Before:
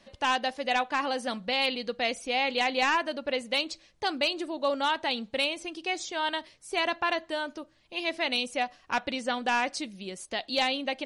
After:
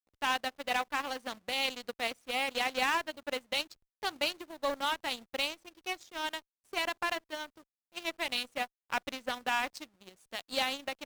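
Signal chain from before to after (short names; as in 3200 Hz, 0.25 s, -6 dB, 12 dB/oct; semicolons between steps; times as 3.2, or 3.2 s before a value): level-crossing sampler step -41 dBFS; added harmonics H 3 -17 dB, 7 -23 dB, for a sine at -17 dBFS; gain -3 dB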